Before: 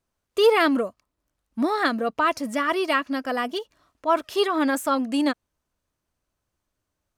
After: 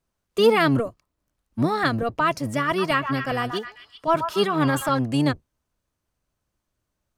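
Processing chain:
sub-octave generator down 1 octave, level −1 dB
0:02.65–0:04.99: echo through a band-pass that steps 130 ms, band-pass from 1,100 Hz, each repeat 0.7 octaves, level −5 dB

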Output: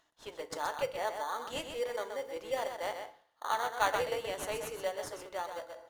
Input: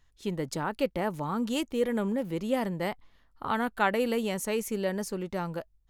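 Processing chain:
high-pass filter 550 Hz 24 dB per octave
single-tap delay 127 ms −7 dB
in parallel at −3 dB: sample-rate reduction 2,600 Hz, jitter 0%
on the sum: high-shelf EQ 11,000 Hz −6 dB
feedback delay network reverb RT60 0.52 s, low-frequency decay 0.95×, high-frequency decay 0.7×, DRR 9.5 dB
reversed playback
upward compression, threshold −37 dBFS
reversed playback
level −5.5 dB

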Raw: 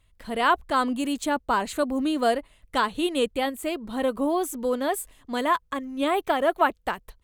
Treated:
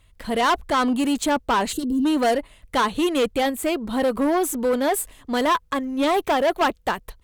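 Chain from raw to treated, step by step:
soft clipping −22.5 dBFS, distortion −10 dB
harmonic generator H 6 −29 dB, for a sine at −22.5 dBFS
gain on a spectral selection 0:01.72–0:02.05, 510–2,700 Hz −24 dB
level +7.5 dB

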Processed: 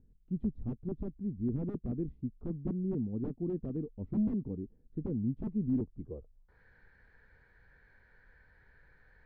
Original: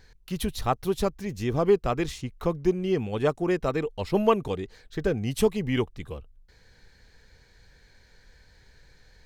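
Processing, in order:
wrap-around overflow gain 17 dB
low-pass filter sweep 250 Hz → 1,600 Hz, 0:05.98–0:06.61
level −8 dB

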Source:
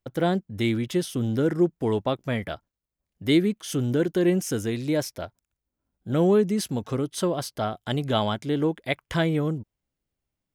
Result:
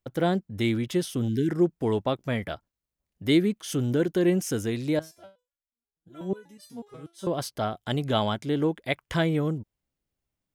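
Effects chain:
0:01.28–0:01.49: time-frequency box erased 440–1,500 Hz
0:04.99–0:07.27: step-sequenced resonator 8.2 Hz 160–600 Hz
level −1 dB

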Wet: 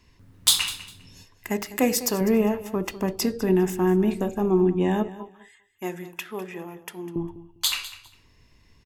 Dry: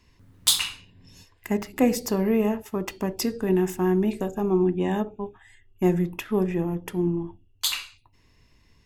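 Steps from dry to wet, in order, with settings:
0:01.50–0:02.21: spectral tilt +2 dB per octave
0:05.08–0:07.16: high-pass filter 1,300 Hz 6 dB per octave
repeating echo 201 ms, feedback 20%, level −16 dB
level +1.5 dB

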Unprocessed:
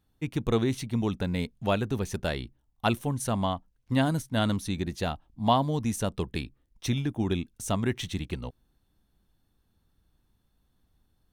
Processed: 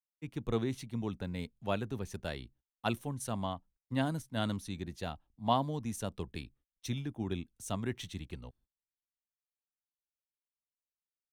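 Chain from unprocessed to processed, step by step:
noise gate −54 dBFS, range −26 dB
multiband upward and downward expander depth 40%
level −8.5 dB

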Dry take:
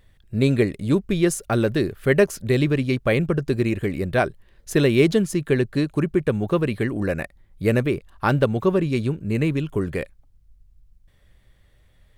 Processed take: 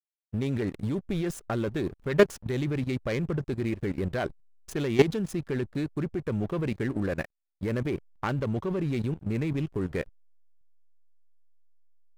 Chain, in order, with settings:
phase distortion by the signal itself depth 0.14 ms
slack as between gear wheels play −32 dBFS
output level in coarse steps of 14 dB

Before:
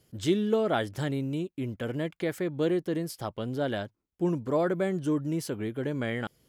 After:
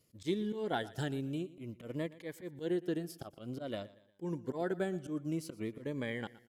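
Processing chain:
transient designer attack +5 dB, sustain −5 dB
tape wow and flutter 22 cents
volume swells 117 ms
low-shelf EQ 120 Hz −7 dB
on a send: repeating echo 118 ms, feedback 43%, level −19 dB
on the sum: phaser whose notches keep moving one way falling 0.53 Hz
level −5 dB

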